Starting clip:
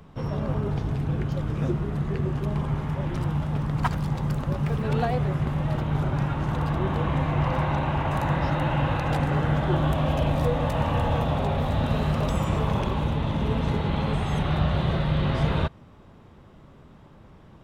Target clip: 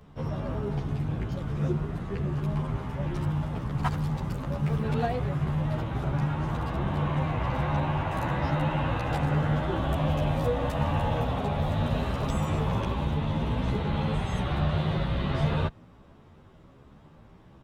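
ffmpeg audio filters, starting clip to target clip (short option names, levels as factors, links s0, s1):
-filter_complex "[0:a]asplit=2[s0][s1];[s1]adelay=11.7,afreqshift=1.3[s2];[s0][s2]amix=inputs=2:normalize=1"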